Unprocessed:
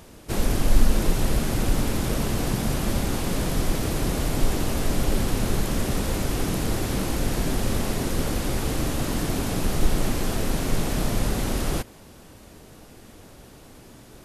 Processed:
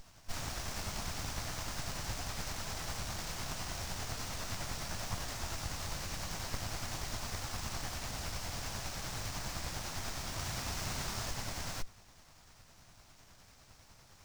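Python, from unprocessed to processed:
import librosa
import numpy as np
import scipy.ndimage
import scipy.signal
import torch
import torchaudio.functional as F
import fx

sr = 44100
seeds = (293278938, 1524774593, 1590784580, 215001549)

y = fx.filter_lfo_highpass(x, sr, shape='sine', hz=9.9, low_hz=630.0, high_hz=1800.0, q=0.7)
y = fx.doubler(y, sr, ms=34.0, db=-2.0, at=(10.36, 11.31))
y = np.abs(y)
y = fx.curve_eq(y, sr, hz=(100.0, 460.0, 670.0, 3300.0, 5500.0, 9200.0), db=(0, -20, -11, -22, -12, -18))
y = fx.running_max(y, sr, window=3)
y = F.gain(torch.from_numpy(y), 13.0).numpy()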